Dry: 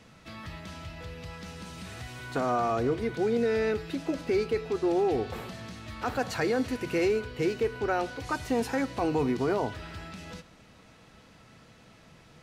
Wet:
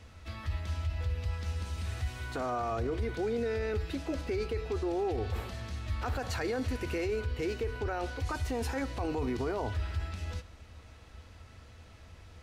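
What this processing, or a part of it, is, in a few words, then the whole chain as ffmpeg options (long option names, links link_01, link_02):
car stereo with a boomy subwoofer: -af "lowshelf=frequency=110:width_type=q:width=3:gain=10,alimiter=limit=-23.5dB:level=0:latency=1:release=24,volume=-1.5dB"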